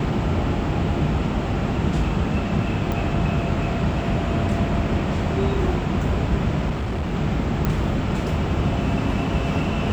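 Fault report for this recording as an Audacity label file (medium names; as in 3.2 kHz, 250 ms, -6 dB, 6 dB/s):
2.920000	2.920000	pop
6.700000	7.140000	clipped -21.5 dBFS
7.650000	7.650000	pop -10 dBFS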